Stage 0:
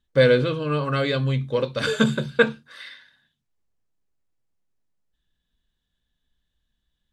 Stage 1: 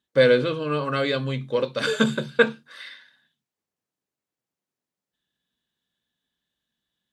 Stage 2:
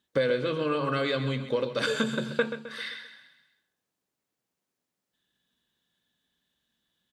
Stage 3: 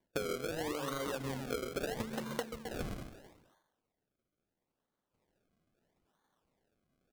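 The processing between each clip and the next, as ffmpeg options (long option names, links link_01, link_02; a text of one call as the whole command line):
ffmpeg -i in.wav -af "highpass=180" out.wav
ffmpeg -i in.wav -filter_complex "[0:a]bandreject=frequency=50:width_type=h:width=6,bandreject=frequency=100:width_type=h:width=6,bandreject=frequency=150:width_type=h:width=6,acompressor=threshold=-29dB:ratio=4,asplit=2[link_01][link_02];[link_02]aecho=0:1:131|262|393|524|655:0.282|0.132|0.0623|0.0293|0.0138[link_03];[link_01][link_03]amix=inputs=2:normalize=0,volume=3.5dB" out.wav
ffmpeg -i in.wav -af "highpass=160,lowpass=7800,acrusher=samples=33:mix=1:aa=0.000001:lfo=1:lforange=33:lforate=0.76,acompressor=threshold=-34dB:ratio=12" out.wav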